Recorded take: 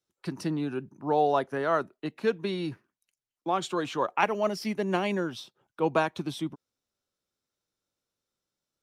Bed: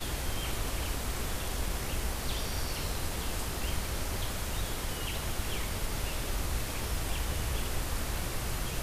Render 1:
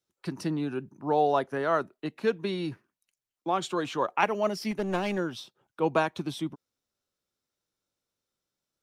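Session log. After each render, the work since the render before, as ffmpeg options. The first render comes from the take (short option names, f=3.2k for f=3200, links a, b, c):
-filter_complex "[0:a]asettb=1/sr,asplit=3[a][b][c];[a]atrim=end=4.714[d];[b]atrim=start=4.71:end=5.18,asetpts=PTS-STARTPTS,afade=t=in:d=0.004:c=qsin,afade=t=out:st=0.466:d=0.004:c=qsin,aeval=exprs='clip(val(0),-1,0.0398)':c=same[e];[c]atrim=start=5.176[f];[d][e]acrossfade=d=0.004:c1=hsin:c2=qsin[g];[g][f]acrossfade=d=0.004:c1=qsin:c2=hsin"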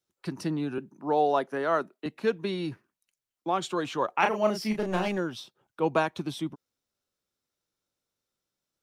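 -filter_complex "[0:a]asettb=1/sr,asplit=3[a][b][c];[a]atrim=end=0.784[d];[b]atrim=start=0.78:end=2.06,asetpts=PTS-STARTPTS,afade=t=in:d=0.004:c=qsin,afade=t=out:st=1.276:d=0.004:c=qsin,highpass=f=160:w=0.5412,highpass=f=160:w=1.3066[e];[c]atrim=start=2.056[f];[d][e]acrossfade=d=0.004:c1=hsin:c2=qsin[g];[g][f]acrossfade=d=0.004:c1=qsin:c2=hsin,asettb=1/sr,asplit=3[h][i][j];[h]atrim=end=4.184[k];[i]atrim=start=4.18:end=5.08,asetpts=PTS-STARTPTS,afade=t=in:d=0.004:c=qsin,afade=t=out:st=0.896:d=0.004:c=qsin,asplit=2[l][m];[m]adelay=33,volume=-4.5dB[n];[l][n]amix=inputs=2:normalize=0,atrim=end_sample=39690[o];[j]atrim=start=5.076[p];[k][o]acrossfade=d=0.004:c1=hsin:c2=qsin[q];[q][p]acrossfade=d=0.004:c1=qsin:c2=hsin"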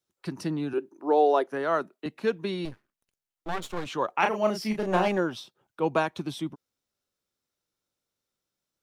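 -filter_complex "[0:a]asettb=1/sr,asplit=3[a][b][c];[a]atrim=end=0.734[d];[b]atrim=start=0.73:end=1.47,asetpts=PTS-STARTPTS,afade=t=in:d=0.004:c=qsin,afade=t=out:st=0.736:d=0.004:c=qsin,lowshelf=f=250:t=q:w=3:g=-11[e];[c]atrim=start=1.466[f];[d][e]acrossfade=d=0.004:c1=hsin:c2=qsin[g];[g][f]acrossfade=d=0.004:c1=qsin:c2=hsin,asettb=1/sr,asplit=3[h][i][j];[h]atrim=end=2.654[k];[i]atrim=start=2.65:end=3.86,asetpts=PTS-STARTPTS,afade=t=in:d=0.004:c=qsin,afade=t=out:st=1.206:d=0.004:c=qsin,aeval=exprs='max(val(0),0)':c=same[l];[j]atrim=start=3.856[m];[k][l]acrossfade=d=0.004:c1=hsin:c2=qsin[n];[n][m]acrossfade=d=0.004:c1=qsin:c2=hsin,asettb=1/sr,asplit=3[o][p][q];[o]atrim=end=4.874[r];[p]atrim=start=4.87:end=5.39,asetpts=PTS-STARTPTS,afade=t=in:d=0.004:c=qsin,afade=t=out:st=0.516:d=0.004:c=qsin,equalizer=f=760:w=0.54:g=6.5[s];[q]atrim=start=5.386[t];[r][s]acrossfade=d=0.004:c1=hsin:c2=qsin[u];[u][t]acrossfade=d=0.004:c1=qsin:c2=hsin"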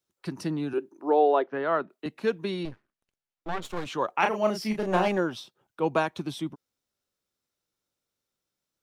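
-filter_complex "[0:a]asettb=1/sr,asplit=3[a][b][c];[a]atrim=end=1.104[d];[b]atrim=start=1.1:end=1.9,asetpts=PTS-STARTPTS,afade=t=in:d=0.004:c=qsin,afade=t=out:st=0.796:d=0.004:c=qsin,lowpass=f=3.6k:w=0.5412,lowpass=f=3.6k:w=1.3066[e];[c]atrim=start=1.896[f];[d][e]acrossfade=d=0.004:c1=hsin:c2=qsin[g];[g][f]acrossfade=d=0.004:c1=qsin:c2=hsin,asettb=1/sr,asplit=3[h][i][j];[h]atrim=end=2.634[k];[i]atrim=start=2.63:end=3.65,asetpts=PTS-STARTPTS,afade=t=in:d=0.004:c=qsin,afade=t=out:st=1.016:d=0.004:c=qsin,highshelf=f=6.8k:g=-12[l];[j]atrim=start=3.646[m];[k][l]acrossfade=d=0.004:c1=hsin:c2=qsin[n];[n][m]acrossfade=d=0.004:c1=qsin:c2=hsin"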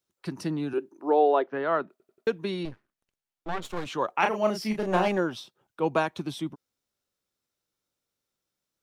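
-filter_complex "[0:a]asplit=5[a][b][c][d][e];[a]atrim=end=2.002[f];[b]atrim=start=1.908:end=2.002[g];[c]atrim=start=1.908:end=2.002[h];[d]atrim=start=1.908:end=2.002[i];[e]atrim=start=2.268[j];[f][g]acrossfade=d=0.004:c1=hsin:c2=hsin[k];[k][h]acrossfade=d=0.004:c1=hsin:c2=hsin[l];[l][i]acrossfade=d=0.004:c1=hsin:c2=hsin[m];[m][j]acrossfade=d=0.004:c1=hsin:c2=hsin"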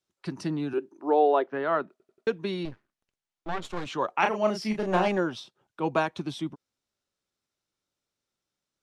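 -af "lowpass=8.3k,bandreject=f=490:w=16"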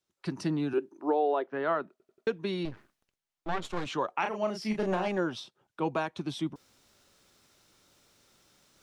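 -af "areverse,acompressor=mode=upward:threshold=-46dB:ratio=2.5,areverse,alimiter=limit=-18.5dB:level=0:latency=1:release=416"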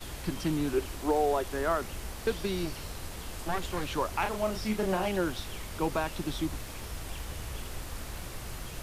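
-filter_complex "[1:a]volume=-6dB[a];[0:a][a]amix=inputs=2:normalize=0"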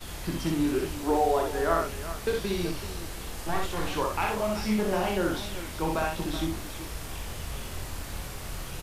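-filter_complex "[0:a]asplit=2[a][b];[b]adelay=24,volume=-6.5dB[c];[a][c]amix=inputs=2:normalize=0,asplit=2[d][e];[e]aecho=0:1:61|378:0.708|0.251[f];[d][f]amix=inputs=2:normalize=0"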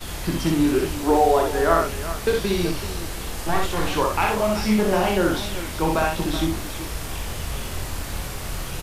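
-af "volume=7dB"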